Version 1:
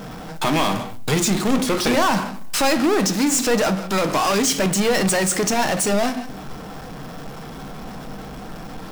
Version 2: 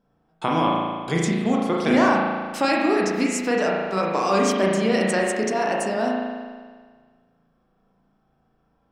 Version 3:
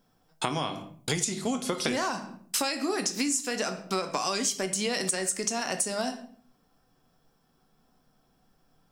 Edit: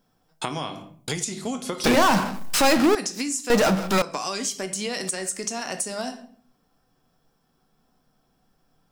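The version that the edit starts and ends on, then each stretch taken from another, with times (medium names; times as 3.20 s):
3
1.84–2.95 s: from 1
3.50–4.02 s: from 1
not used: 2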